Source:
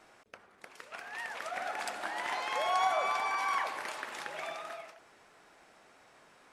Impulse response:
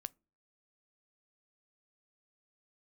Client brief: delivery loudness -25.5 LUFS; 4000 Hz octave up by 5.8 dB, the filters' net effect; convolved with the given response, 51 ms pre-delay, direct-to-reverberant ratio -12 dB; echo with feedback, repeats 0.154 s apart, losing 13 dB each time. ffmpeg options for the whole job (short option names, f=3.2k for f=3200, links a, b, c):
-filter_complex "[0:a]equalizer=f=4k:t=o:g=7.5,aecho=1:1:154|308|462:0.224|0.0493|0.0108,asplit=2[a][b];[1:a]atrim=start_sample=2205,adelay=51[c];[b][c]afir=irnorm=-1:irlink=0,volume=16dB[d];[a][d]amix=inputs=2:normalize=0,volume=-5dB"